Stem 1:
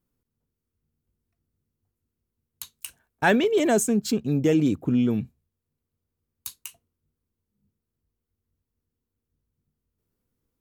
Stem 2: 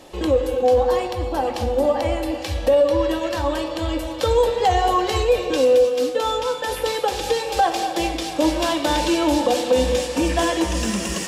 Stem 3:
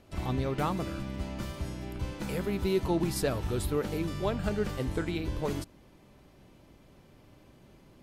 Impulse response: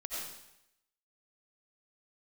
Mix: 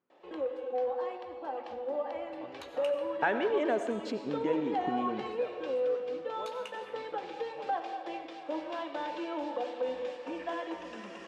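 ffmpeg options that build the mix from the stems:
-filter_complex "[0:a]acompressor=threshold=-29dB:ratio=6,volume=2dB,asplit=3[a][b][c];[b]volume=-7dB[d];[1:a]asoftclip=type=hard:threshold=-10dB,adelay=100,volume=-14dB[e];[2:a]adelay=2150,volume=-14.5dB,asplit=2[f][g];[g]volume=-8.5dB[h];[c]apad=whole_len=448878[i];[f][i]sidechaincompress=threshold=-44dB:ratio=8:attack=16:release=240[j];[3:a]atrim=start_sample=2205[k];[d][h]amix=inputs=2:normalize=0[l];[l][k]afir=irnorm=-1:irlink=0[m];[a][e][j][m]amix=inputs=4:normalize=0,highpass=380,lowpass=2.2k"

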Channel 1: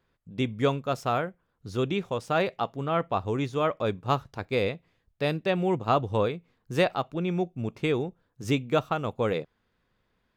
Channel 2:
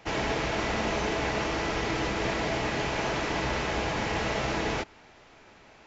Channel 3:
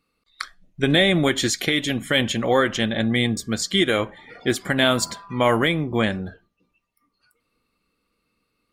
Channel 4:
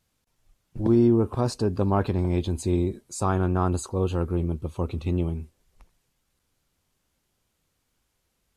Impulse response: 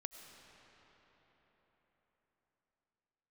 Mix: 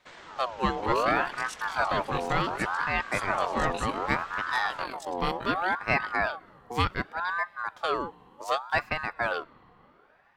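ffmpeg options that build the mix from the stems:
-filter_complex "[0:a]volume=-0.5dB,asplit=2[a][b];[b]volume=-14.5dB[c];[1:a]alimiter=level_in=2.5dB:limit=-24dB:level=0:latency=1:release=322,volume=-2.5dB,acontrast=73,volume=-16dB[d];[2:a]tremolo=f=47:d=0.788,volume=-15dB[e];[3:a]volume=-5.5dB[f];[4:a]atrim=start_sample=2205[g];[c][g]afir=irnorm=-1:irlink=0[h];[a][d][e][f][h]amix=inputs=5:normalize=0,aeval=exprs='val(0)*sin(2*PI*1000*n/s+1000*0.4/0.67*sin(2*PI*0.67*n/s))':c=same"

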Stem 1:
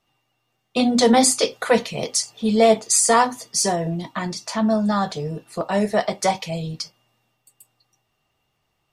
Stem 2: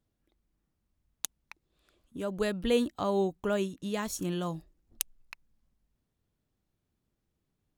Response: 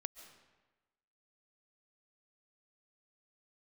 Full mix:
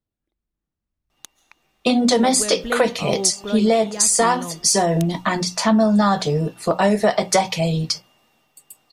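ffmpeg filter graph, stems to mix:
-filter_complex "[0:a]bandreject=f=60:t=h:w=6,bandreject=f=120:t=h:w=6,bandreject=f=180:t=h:w=6,acompressor=threshold=-20dB:ratio=6,adelay=1100,volume=-1dB[a];[1:a]highshelf=f=8.2k:g=-11,volume=-9.5dB,asplit=2[b][c];[c]volume=-3.5dB[d];[2:a]atrim=start_sample=2205[e];[d][e]afir=irnorm=-1:irlink=0[f];[a][b][f]amix=inputs=3:normalize=0,dynaudnorm=f=550:g=5:m=10dB"

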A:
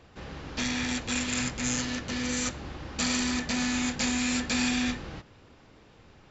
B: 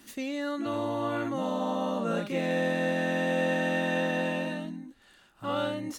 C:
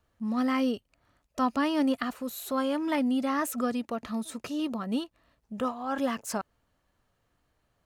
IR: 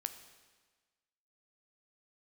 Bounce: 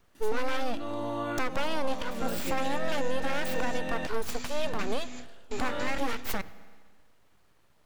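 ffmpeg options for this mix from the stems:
-filter_complex "[0:a]acompressor=threshold=-30dB:ratio=6,adelay=1300,volume=-8dB[a];[1:a]adelay=150,volume=-5dB,asplit=3[b][c][d];[b]atrim=end=4.07,asetpts=PTS-STARTPTS,afade=t=out:st=4.066:d=0.004:c=hsin[e];[c]atrim=start=4.07:end=4.64,asetpts=PTS-STARTPTS,volume=0[f];[d]atrim=start=4.64,asetpts=PTS-STARTPTS,afade=t=in:d=0.004:c=hsin[g];[e][f][g]concat=n=3:v=0:a=1,asplit=2[h][i];[i]volume=-6.5dB[j];[2:a]acontrast=86,aeval=exprs='abs(val(0))':c=same,volume=-2.5dB,asplit=3[k][l][m];[l]volume=-3.5dB[n];[m]apad=whole_len=339661[o];[a][o]sidechaingate=range=-33dB:threshold=-54dB:ratio=16:detection=peak[p];[3:a]atrim=start_sample=2205[q];[j][n]amix=inputs=2:normalize=0[r];[r][q]afir=irnorm=-1:irlink=0[s];[p][h][k][s]amix=inputs=4:normalize=0,alimiter=limit=-18dB:level=0:latency=1:release=371"

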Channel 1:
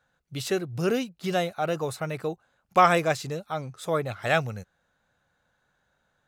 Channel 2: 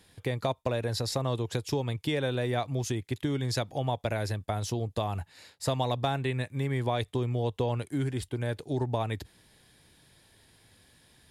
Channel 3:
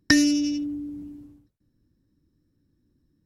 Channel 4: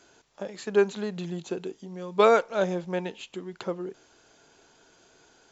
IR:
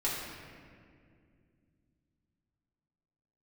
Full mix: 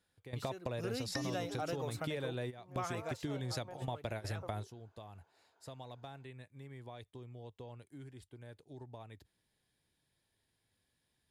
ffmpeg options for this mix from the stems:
-filter_complex "[0:a]lowshelf=f=74:g=-11,volume=-3dB,afade=t=in:st=0.7:d=0.37:silence=0.251189,afade=t=out:st=1.96:d=0.58:silence=0.354813,afade=t=out:st=3.37:d=0.53:silence=0.375837,asplit=2[a][b];[1:a]volume=-2.5dB[c];[2:a]adelay=1050,volume=-14dB[d];[3:a]bandpass=f=860:t=q:w=1.6:csg=0,acompressor=threshold=-30dB:ratio=6,adelay=750,volume=-9dB[e];[b]apad=whole_len=498456[f];[c][f]sidechaingate=range=-18dB:threshold=-59dB:ratio=16:detection=peak[g];[a][g][d][e]amix=inputs=4:normalize=0,acompressor=threshold=-38dB:ratio=3"

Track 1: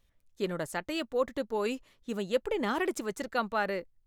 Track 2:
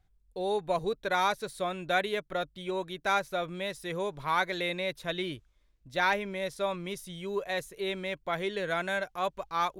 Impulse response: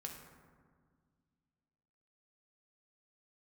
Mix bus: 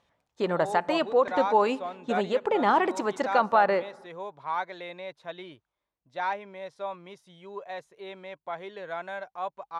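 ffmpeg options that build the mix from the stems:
-filter_complex "[0:a]alimiter=limit=-23dB:level=0:latency=1:release=59,volume=2.5dB,asplit=2[a][b];[b]volume=-14dB[c];[1:a]adelay=200,volume=-11.5dB[d];[2:a]atrim=start_sample=2205[e];[c][e]afir=irnorm=-1:irlink=0[f];[a][d][f]amix=inputs=3:normalize=0,highpass=120,lowpass=6k,equalizer=f=850:t=o:w=1.3:g=12.5"

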